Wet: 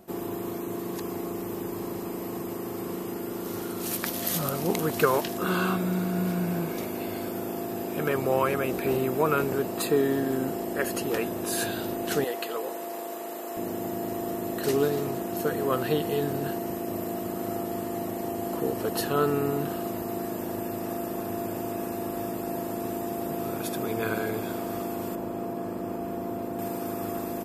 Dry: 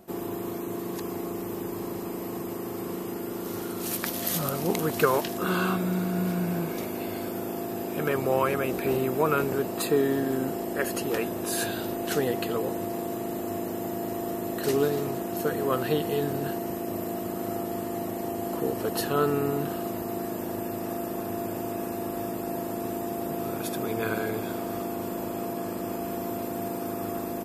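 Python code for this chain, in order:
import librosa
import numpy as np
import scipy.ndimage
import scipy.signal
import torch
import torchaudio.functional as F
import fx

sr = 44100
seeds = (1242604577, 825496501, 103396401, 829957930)

y = fx.highpass(x, sr, hz=480.0, slope=12, at=(12.24, 13.57))
y = fx.high_shelf(y, sr, hz=2200.0, db=-10.0, at=(25.15, 26.59))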